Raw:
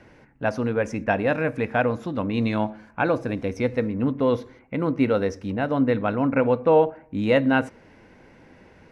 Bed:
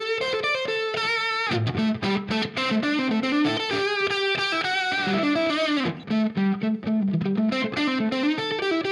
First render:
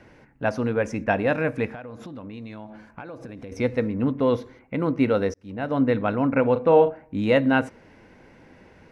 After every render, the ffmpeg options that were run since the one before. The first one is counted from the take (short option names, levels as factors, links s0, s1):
-filter_complex "[0:a]asettb=1/sr,asplit=3[s0][s1][s2];[s0]atrim=end=1.734[s3];[s1]atrim=start=1.73:end=3.52,asetpts=PTS-STARTPTS,afade=t=in:d=0.004:c=qsin,afade=t=out:st=1.786:d=0.004:c=qsin,acompressor=threshold=0.02:ratio=12:attack=3.2:release=140:knee=1:detection=peak[s4];[s2]atrim=start=3.516[s5];[s3][s4]acrossfade=d=0.004:c1=hsin:c2=qsin[s6];[s6][s5]acrossfade=d=0.004:c1=qsin:c2=hsin,asettb=1/sr,asplit=3[s7][s8][s9];[s7]atrim=end=6.524[s10];[s8]atrim=start=6.52:end=7.04,asetpts=PTS-STARTPTS,afade=t=in:d=0.004:c=qsin,afade=t=out:st=0.516:d=0.004:c=qsin,asplit=2[s11][s12];[s12]adelay=36,volume=0.355[s13];[s11][s13]amix=inputs=2:normalize=0,atrim=end_sample=22932[s14];[s9]atrim=start=7.036[s15];[s10][s14]acrossfade=d=0.004:c1=hsin:c2=qsin[s16];[s16][s15]acrossfade=d=0.004:c1=qsin:c2=hsin,asplit=2[s17][s18];[s17]atrim=end=5.34,asetpts=PTS-STARTPTS,afade=t=out:st=5.336:d=0.004:c=hsin[s19];[s18]atrim=start=5.34,asetpts=PTS-STARTPTS,afade=t=in:d=0.45[s20];[s19][s20]concat=n=2:v=0:a=1"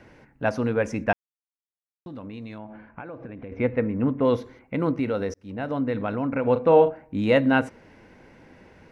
-filter_complex "[0:a]asettb=1/sr,asplit=3[s0][s1][s2];[s0]atrim=end=2.584[s3];[s1]atrim=start=2.58:end=4.25,asetpts=PTS-STARTPTS,afade=t=in:d=0.004:c=qsin,afade=t=out:st=1.666:d=0.004:c=qsin,lowpass=f=2700:w=0.5412,lowpass=f=2700:w=1.3066[s4];[s2]atrim=start=4.246[s5];[s3][s4]acrossfade=d=0.004:c1=hsin:c2=qsin[s6];[s6][s5]acrossfade=d=0.004:c1=qsin:c2=hsin,asettb=1/sr,asplit=3[s7][s8][s9];[s7]atrim=end=4.994[s10];[s8]atrim=start=4.99:end=6.47,asetpts=PTS-STARTPTS,afade=t=in:d=0.004:c=qsin,afade=t=out:st=1.476:d=0.004:c=qsin,acompressor=threshold=0.0562:ratio=2:attack=3.2:release=140:knee=1:detection=peak[s11];[s9]atrim=start=6.466[s12];[s10][s11]acrossfade=d=0.004:c1=hsin:c2=qsin[s13];[s13][s12]acrossfade=d=0.004:c1=qsin:c2=hsin,asplit=3[s14][s15][s16];[s14]atrim=end=1.13,asetpts=PTS-STARTPTS,afade=t=out:st=1.126:d=0.004:c=hsin[s17];[s15]atrim=start=1.13:end=2.06,asetpts=PTS-STARTPTS,volume=0[s18];[s16]atrim=start=2.06,asetpts=PTS-STARTPTS,afade=t=in:d=0.004:c=hsin[s19];[s17][s18][s19]concat=n=3:v=0:a=1"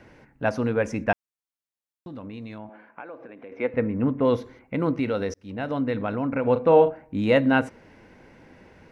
-filter_complex "[0:a]asettb=1/sr,asplit=3[s0][s1][s2];[s0]atrim=end=2.694[s3];[s1]atrim=start=2.69:end=3.74,asetpts=PTS-STARTPTS,afade=t=in:d=0.004:c=qsin,afade=t=out:st=1.046:d=0.004:c=qsin,highpass=360[s4];[s2]atrim=start=3.736[s5];[s3][s4]acrossfade=d=0.004:c1=hsin:c2=qsin[s6];[s6][s5]acrossfade=d=0.004:c1=qsin:c2=hsin,asettb=1/sr,asplit=3[s7][s8][s9];[s7]atrim=end=4.924[s10];[s8]atrim=start=4.92:end=5.95,asetpts=PTS-STARTPTS,afade=t=in:d=0.004:c=qsin,afade=t=out:st=1.026:d=0.004:c=qsin,equalizer=f=3700:t=o:w=1.7:g=4[s11];[s9]atrim=start=5.946[s12];[s10][s11]acrossfade=d=0.004:c1=hsin:c2=qsin[s13];[s13][s12]acrossfade=d=0.004:c1=qsin:c2=hsin"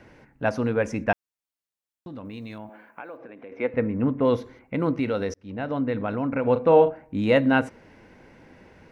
-filter_complex "[0:a]asettb=1/sr,asplit=3[s0][s1][s2];[s0]atrim=end=2.254[s3];[s1]atrim=start=2.25:end=3.17,asetpts=PTS-STARTPTS,afade=t=in:d=0.004:c=qsin,afade=t=out:st=0.916:d=0.004:c=qsin,aemphasis=mode=production:type=50kf[s4];[s2]atrim=start=3.166[s5];[s3][s4]acrossfade=d=0.004:c1=hsin:c2=qsin[s6];[s6][s5]acrossfade=d=0.004:c1=qsin:c2=hsin,asettb=1/sr,asplit=3[s7][s8][s9];[s7]atrim=end=5.354[s10];[s8]atrim=start=5.35:end=6.09,asetpts=PTS-STARTPTS,afade=t=in:d=0.004:c=qsin,afade=t=out:st=0.736:d=0.004:c=qsin,aemphasis=mode=reproduction:type=50kf[s11];[s9]atrim=start=6.086[s12];[s10][s11]acrossfade=d=0.004:c1=hsin:c2=qsin[s13];[s13][s12]acrossfade=d=0.004:c1=qsin:c2=hsin"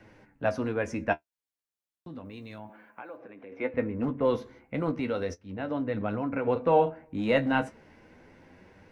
-filter_complex "[0:a]flanger=delay=9.3:depth=4.9:regen=40:speed=0.33:shape=triangular,acrossover=split=290|2500[s0][s1][s2];[s0]asoftclip=type=hard:threshold=0.0316[s3];[s3][s1][s2]amix=inputs=3:normalize=0"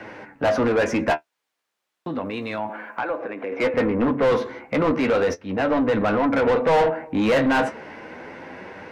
-filter_complex "[0:a]asplit=2[s0][s1];[s1]highpass=f=720:p=1,volume=28.2,asoftclip=type=tanh:threshold=0.299[s2];[s0][s2]amix=inputs=2:normalize=0,lowpass=f=1600:p=1,volume=0.501"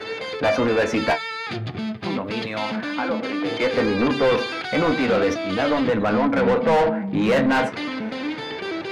-filter_complex "[1:a]volume=0.596[s0];[0:a][s0]amix=inputs=2:normalize=0"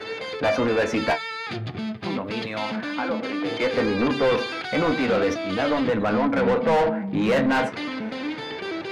-af "volume=0.794"